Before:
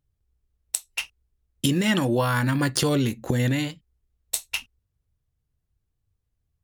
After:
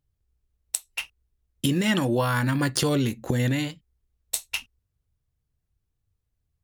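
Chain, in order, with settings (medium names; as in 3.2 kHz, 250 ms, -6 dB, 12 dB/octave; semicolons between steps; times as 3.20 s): 0.76–1.71 s: dynamic bell 5.9 kHz, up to -5 dB, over -45 dBFS, Q 1.1; trim -1 dB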